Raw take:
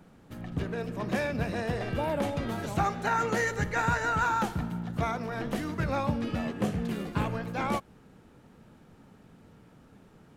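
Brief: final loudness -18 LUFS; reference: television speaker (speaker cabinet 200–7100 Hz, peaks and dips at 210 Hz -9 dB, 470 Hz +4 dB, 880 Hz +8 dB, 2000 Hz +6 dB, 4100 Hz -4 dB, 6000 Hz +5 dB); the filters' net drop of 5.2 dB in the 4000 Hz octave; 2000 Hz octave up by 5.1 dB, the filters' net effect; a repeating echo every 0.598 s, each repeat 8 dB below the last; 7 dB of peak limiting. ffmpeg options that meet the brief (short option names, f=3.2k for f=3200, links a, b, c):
-af "equalizer=f=2k:t=o:g=4.5,equalizer=f=4k:t=o:g=-9,alimiter=limit=-20.5dB:level=0:latency=1,highpass=f=200:w=0.5412,highpass=f=200:w=1.3066,equalizer=f=210:t=q:w=4:g=-9,equalizer=f=470:t=q:w=4:g=4,equalizer=f=880:t=q:w=4:g=8,equalizer=f=2k:t=q:w=4:g=6,equalizer=f=4.1k:t=q:w=4:g=-4,equalizer=f=6k:t=q:w=4:g=5,lowpass=f=7.1k:w=0.5412,lowpass=f=7.1k:w=1.3066,aecho=1:1:598|1196|1794|2392|2990:0.398|0.159|0.0637|0.0255|0.0102,volume=11dB"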